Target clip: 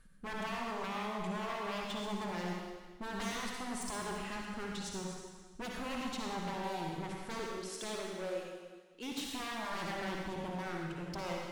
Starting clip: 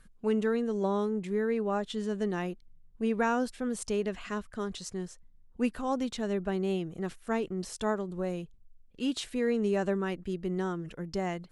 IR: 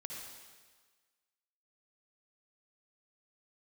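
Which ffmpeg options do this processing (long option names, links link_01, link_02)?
-filter_complex "[0:a]asettb=1/sr,asplit=3[link_01][link_02][link_03];[link_01]atrim=end=7.394[link_04];[link_02]atrim=start=7.39:end=9.12,asetpts=PTS-STARTPTS,afade=type=in:duration=0.004:curve=qsin,afade=type=out:start_time=1.726:duration=0.004:curve=qsin,highpass=370[link_05];[link_03]atrim=start=9.116[link_06];[link_04][link_05]acrossfade=duration=0.004:curve1=hsin:curve2=qsin[link_07];[link_07][link_06]acrossfade=duration=0.004:curve1=qsin:curve2=hsin,aeval=exprs='0.0251*(abs(mod(val(0)/0.0251+3,4)-2)-1)':channel_layout=same[link_08];[1:a]atrim=start_sample=2205[link_09];[link_08][link_09]afir=irnorm=-1:irlink=0,volume=1dB"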